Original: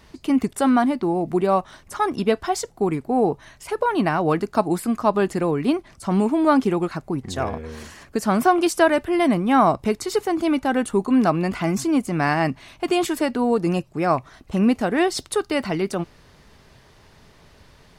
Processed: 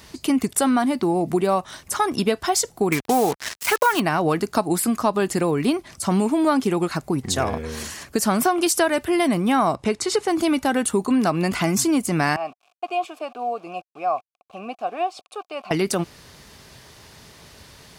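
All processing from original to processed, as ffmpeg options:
-filter_complex "[0:a]asettb=1/sr,asplit=3[a][b][c];[a]atrim=end=2.924[d];[b]atrim=start=2.92:end=4,asetpts=PTS-STARTPTS,afade=t=in:d=0.004:c=qsin,afade=t=out:st=1.076:d=0.004:c=qsin,equalizer=f=1.8k:t=o:w=2.1:g=13,acrusher=bits=4:mix=0:aa=0.5[e];[c]atrim=start=3.996[f];[d][e]acrossfade=d=0.004:c1=hsin:c2=qsin[g];[g][f]acrossfade=d=0.004:c1=qsin:c2=hsin,asettb=1/sr,asplit=3[h][i][j];[h]atrim=end=9.754[k];[i]atrim=start=9.75:end=10.28,asetpts=PTS-STARTPTS,afade=t=in:d=0.004:c=qsin,afade=t=out:st=0.526:d=0.004:c=qsin,lowpass=f=10k:w=0.5412,lowpass=f=10k:w=1.3066,bass=f=250:g=-3,treble=f=4k:g=-6[l];[j]atrim=start=10.276[m];[k][l]acrossfade=d=0.004:c1=hsin:c2=qsin[n];[n][m]acrossfade=d=0.004:c1=qsin:c2=hsin,asettb=1/sr,asplit=3[o][p][q];[o]atrim=end=12.364[r];[p]atrim=start=12.36:end=15.71,asetpts=PTS-STARTPTS,afade=t=in:d=0.004:c=qsin,afade=t=out:st=3.346:d=0.004:c=qsin,aeval=exprs='val(0)*gte(abs(val(0)),0.0158)':c=same,asplit=3[s][t][u];[s]bandpass=f=730:t=q:w=8,volume=0dB[v];[t]bandpass=f=1.09k:t=q:w=8,volume=-6dB[w];[u]bandpass=f=2.44k:t=q:w=8,volume=-9dB[x];[v][w][x]amix=inputs=3:normalize=0[y];[q]atrim=start=15.706[z];[r][y]acrossfade=d=0.004:c1=hsin:c2=qsin[aa];[aa][z]acrossfade=d=0.004:c1=qsin:c2=hsin,highpass=54,highshelf=f=3.8k:g=11,acompressor=threshold=-21dB:ratio=3,volume=3.5dB"

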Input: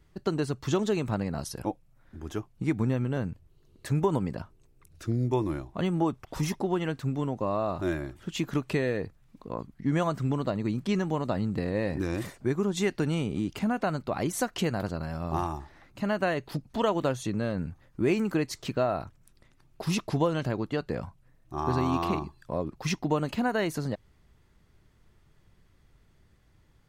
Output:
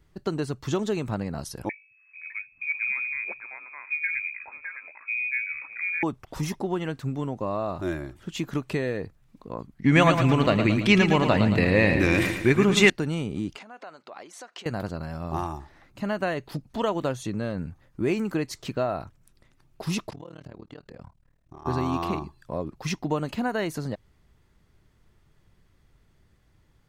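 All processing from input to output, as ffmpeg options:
-filter_complex "[0:a]asettb=1/sr,asplit=3[a][b][c];[a]atrim=end=1.694[d];[b]atrim=start=1.69:end=6.03,asetpts=PTS-STARTPTS,afade=t=in:d=0.004:c=qsin,afade=t=out:st=4.336:d=0.004:c=qsin,bandreject=f=50:t=h:w=6,bandreject=f=100:t=h:w=6,bandreject=f=150:t=h:w=6,bandreject=f=200:t=h:w=6,bandreject=f=250:t=h:w=6,bandreject=f=300:t=h:w=6,bandreject=f=350:t=h:w=6,bandreject=f=400:t=h:w=6,lowpass=f=2.2k:t=q:w=0.5098,lowpass=f=2.2k:t=q:w=0.6013,lowpass=f=2.2k:t=q:w=0.9,lowpass=f=2.2k:t=q:w=2.563,afreqshift=-2600,acrossover=split=180|1600[e][f][g];[e]adelay=210[h];[f]adelay=610[i];[h][i][g]amix=inputs=3:normalize=0,atrim=end_sample=191394[j];[c]atrim=start=6.026[k];[d][j]acrossfade=d=0.004:c1=hsin:c2=qsin[l];[l][k]acrossfade=d=0.004:c1=qsin:c2=hsin,asettb=1/sr,asplit=3[m][n][o];[m]atrim=end=9.844[p];[n]atrim=start=9.84:end=12.9,asetpts=PTS-STARTPTS,afade=t=in:d=0.004:c=qsin,afade=t=out:st=3.056:d=0.004:c=qsin,equalizer=f=2.4k:w=1.4:g=13,acontrast=86,aecho=1:1:112|224|336|448|560|672:0.422|0.207|0.101|0.0496|0.0243|0.0119,atrim=end_sample=134946[q];[o]atrim=start=12.896[r];[p][q]acrossfade=d=0.004:c1=hsin:c2=qsin[s];[s][r]acrossfade=d=0.004:c1=qsin:c2=hsin,asettb=1/sr,asplit=3[t][u][v];[t]atrim=end=13.564[w];[u]atrim=start=13.56:end=14.66,asetpts=PTS-STARTPTS,afade=t=in:d=0.004:c=qsin,afade=t=out:st=1.096:d=0.004:c=qsin,acompressor=threshold=-36dB:ratio=4:attack=3.2:release=140:knee=1:detection=peak,highpass=520,lowpass=6.3k[x];[v]atrim=start=14.656[y];[w][x]acrossfade=d=0.004:c1=hsin:c2=qsin[z];[z][y]acrossfade=d=0.004:c1=qsin:c2=hsin,asettb=1/sr,asplit=3[aa][ab][ac];[aa]atrim=end=20.104[ad];[ab]atrim=start=20.1:end=21.66,asetpts=PTS-STARTPTS,afade=t=in:d=0.004:c=qsin,afade=t=out:st=1.556:d=0.004:c=qsin,equalizer=f=12k:t=o:w=0.4:g=-8,acompressor=threshold=-37dB:ratio=4:attack=3.2:release=140:knee=1:detection=peak,tremolo=f=38:d=1[ae];[ac]atrim=start=21.656[af];[ad][ae]acrossfade=d=0.004:c1=hsin:c2=qsin[ag];[ag][af]acrossfade=d=0.004:c1=qsin:c2=hsin"

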